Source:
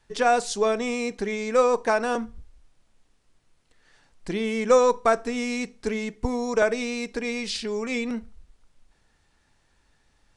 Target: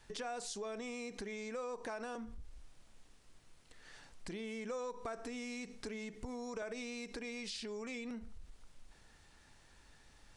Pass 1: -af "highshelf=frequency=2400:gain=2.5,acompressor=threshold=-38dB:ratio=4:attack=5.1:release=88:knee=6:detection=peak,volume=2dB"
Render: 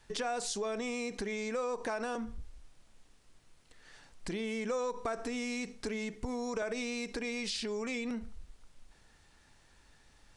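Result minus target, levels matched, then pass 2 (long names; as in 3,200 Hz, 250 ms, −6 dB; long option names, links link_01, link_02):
downward compressor: peak gain reduction −7 dB
-af "highshelf=frequency=2400:gain=2.5,acompressor=threshold=-47.5dB:ratio=4:attack=5.1:release=88:knee=6:detection=peak,volume=2dB"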